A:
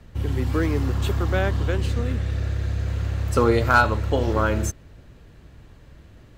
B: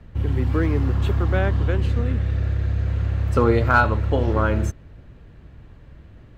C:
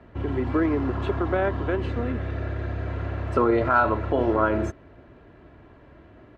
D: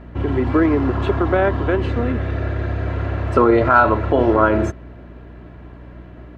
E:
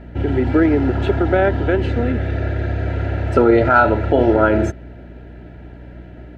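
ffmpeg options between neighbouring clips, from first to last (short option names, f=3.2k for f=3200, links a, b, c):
-af "bass=f=250:g=3,treble=f=4k:g=-11"
-af "aecho=1:1:3:0.38,alimiter=limit=-13.5dB:level=0:latency=1:release=52,bandpass=f=700:t=q:w=0.55:csg=0,volume=5dB"
-af "aeval=exprs='val(0)+0.00562*(sin(2*PI*60*n/s)+sin(2*PI*2*60*n/s)/2+sin(2*PI*3*60*n/s)/3+sin(2*PI*4*60*n/s)/4+sin(2*PI*5*60*n/s)/5)':c=same,volume=7dB"
-af "asuperstop=centerf=1100:order=4:qfactor=3,volume=1.5dB"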